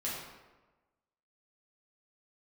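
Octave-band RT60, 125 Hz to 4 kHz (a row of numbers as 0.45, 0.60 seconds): 1.2, 1.2, 1.2, 1.2, 1.0, 0.75 seconds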